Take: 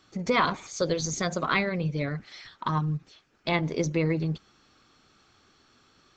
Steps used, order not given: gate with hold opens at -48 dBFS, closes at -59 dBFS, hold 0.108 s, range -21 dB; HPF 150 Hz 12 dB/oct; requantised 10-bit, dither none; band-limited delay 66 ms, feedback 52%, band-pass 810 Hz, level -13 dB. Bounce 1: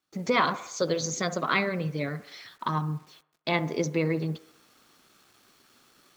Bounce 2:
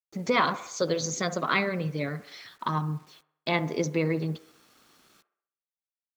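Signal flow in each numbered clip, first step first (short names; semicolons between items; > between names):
HPF > requantised > gate with hold > band-limited delay; HPF > gate with hold > requantised > band-limited delay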